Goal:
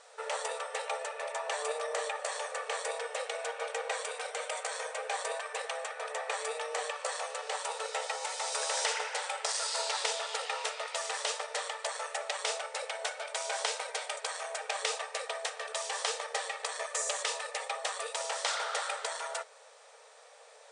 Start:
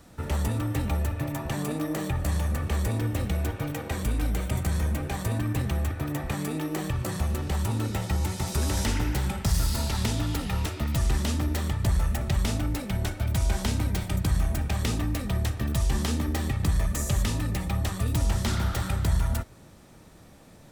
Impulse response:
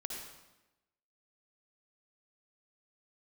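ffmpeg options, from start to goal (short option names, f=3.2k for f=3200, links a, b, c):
-af "afftfilt=real='re*between(b*sr/4096,420,9800)':imag='im*between(b*sr/4096,420,9800)':win_size=4096:overlap=0.75,volume=1.5dB"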